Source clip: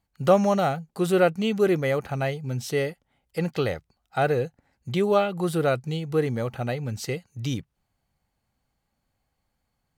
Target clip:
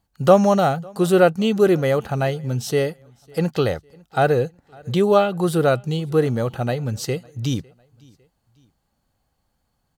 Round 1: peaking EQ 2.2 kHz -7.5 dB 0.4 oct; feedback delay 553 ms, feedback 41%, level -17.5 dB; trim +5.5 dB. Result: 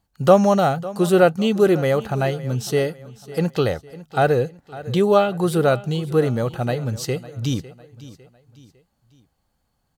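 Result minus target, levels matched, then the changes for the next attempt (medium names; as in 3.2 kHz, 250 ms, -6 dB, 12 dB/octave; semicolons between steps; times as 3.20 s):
echo-to-direct +9.5 dB
change: feedback delay 553 ms, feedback 41%, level -27 dB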